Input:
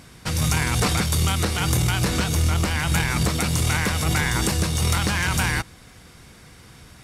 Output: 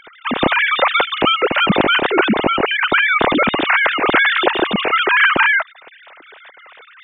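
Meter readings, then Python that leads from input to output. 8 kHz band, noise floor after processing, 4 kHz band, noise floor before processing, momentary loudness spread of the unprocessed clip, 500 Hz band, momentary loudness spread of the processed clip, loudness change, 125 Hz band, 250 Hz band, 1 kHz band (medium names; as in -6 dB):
under -40 dB, -45 dBFS, +8.0 dB, -48 dBFS, 2 LU, +13.0 dB, 4 LU, +7.5 dB, -10.5 dB, +6.0 dB, +12.0 dB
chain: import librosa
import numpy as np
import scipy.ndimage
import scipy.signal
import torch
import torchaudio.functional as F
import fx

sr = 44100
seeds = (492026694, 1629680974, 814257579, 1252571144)

y = fx.sine_speech(x, sr)
y = y * librosa.db_to_amplitude(6.0)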